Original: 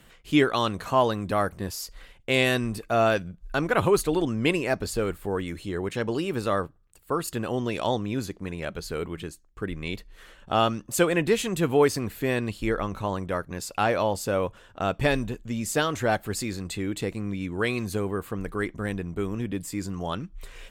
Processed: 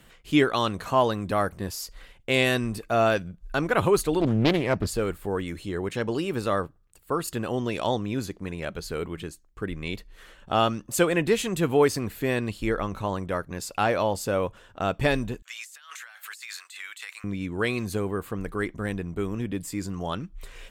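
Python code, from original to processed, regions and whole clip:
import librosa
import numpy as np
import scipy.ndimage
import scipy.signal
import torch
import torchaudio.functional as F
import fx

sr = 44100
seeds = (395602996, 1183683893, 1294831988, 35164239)

y = fx.chain(x, sr, fx.highpass(hz=57.0, slope=6),
    fx.bass_treble(bass_db=9, treble_db=-6),
    fx.doppler_dist(depth_ms=0.59), at=(4.2, 4.87))
y = fx.chain(y, sr, fx.highpass(hz=1300.0, slope=24),
    fx.peak_eq(hz=4900.0, db=-4.0, octaves=0.2),
    fx.over_compress(threshold_db=-43.0, ratio=-1.0), at=(15.42, 17.24))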